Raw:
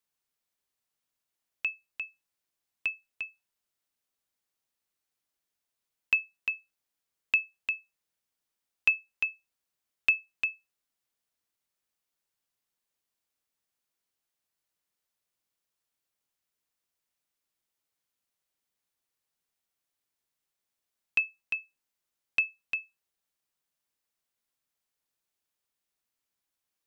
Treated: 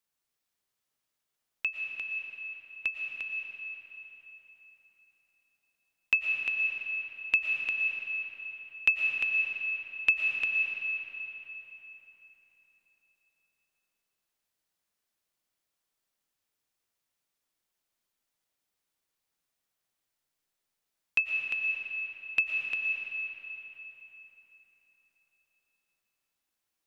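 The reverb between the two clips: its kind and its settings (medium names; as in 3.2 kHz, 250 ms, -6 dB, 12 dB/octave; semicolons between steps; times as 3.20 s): algorithmic reverb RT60 4.1 s, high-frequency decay 0.75×, pre-delay 75 ms, DRR 1 dB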